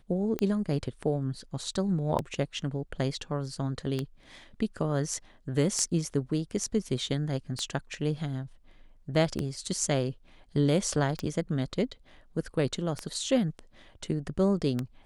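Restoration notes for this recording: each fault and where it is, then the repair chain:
scratch tick 33 1/3 rpm −16 dBFS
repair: click removal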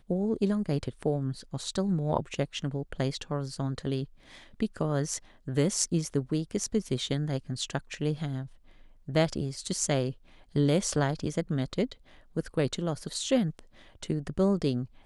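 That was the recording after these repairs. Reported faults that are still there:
none of them is left

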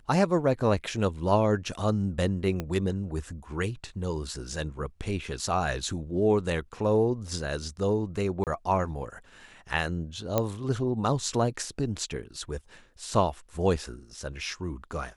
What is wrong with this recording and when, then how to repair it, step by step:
0:02.60: click −17 dBFS
0:08.44–0:08.47: drop-out 28 ms
0:10.38: click −10 dBFS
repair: click removal
repair the gap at 0:08.44, 28 ms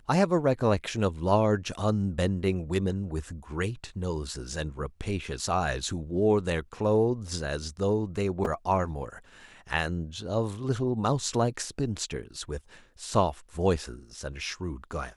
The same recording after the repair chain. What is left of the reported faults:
0:02.60: click
0:10.38: click

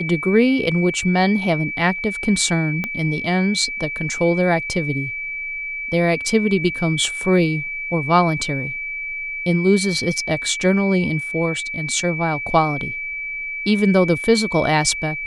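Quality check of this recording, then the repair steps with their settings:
whistle 2,300 Hz −25 dBFS
0:02.84: click −11 dBFS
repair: click removal
notch filter 2,300 Hz, Q 30

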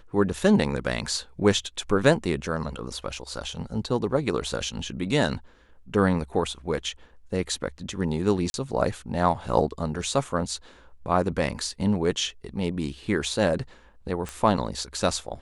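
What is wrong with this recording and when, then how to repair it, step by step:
0:08.50–0:08.54: drop-out 41 ms
0:14.29: click −18 dBFS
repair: click removal
repair the gap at 0:08.50, 41 ms

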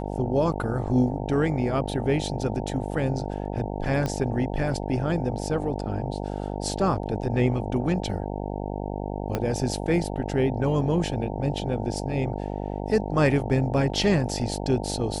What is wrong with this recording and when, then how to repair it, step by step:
mains buzz 50 Hz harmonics 18 −31 dBFS
0:04.06: click −15 dBFS
0:09.35: click −12 dBFS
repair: click removal
hum removal 50 Hz, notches 18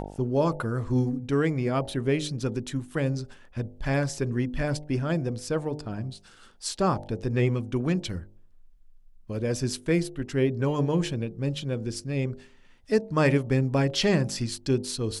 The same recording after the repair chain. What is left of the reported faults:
0:09.35: click

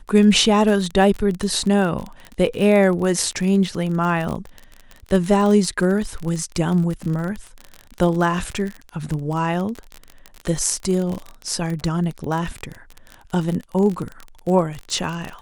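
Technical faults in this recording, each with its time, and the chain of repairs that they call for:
surface crackle 34 per second −24 dBFS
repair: click removal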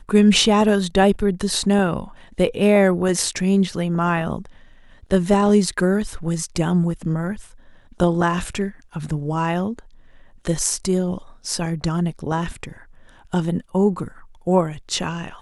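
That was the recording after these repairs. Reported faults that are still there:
none of them is left

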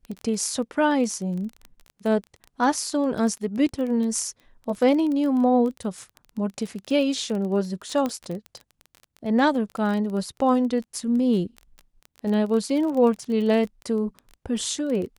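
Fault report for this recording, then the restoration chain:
surface crackle 22 per second −29 dBFS
0:08.06: click −14 dBFS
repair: click removal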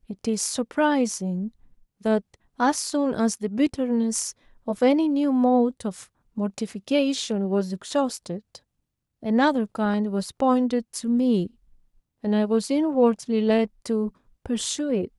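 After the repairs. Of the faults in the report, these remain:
none of them is left

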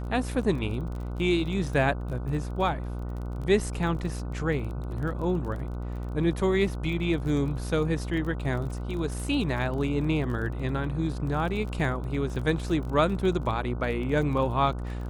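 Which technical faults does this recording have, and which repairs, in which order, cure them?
mains buzz 60 Hz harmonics 25 −33 dBFS
surface crackle 24 per second −35 dBFS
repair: click removal
hum removal 60 Hz, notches 25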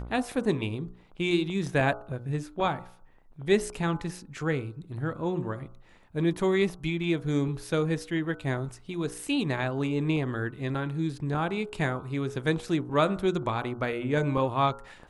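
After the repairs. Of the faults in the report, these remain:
none of them is left

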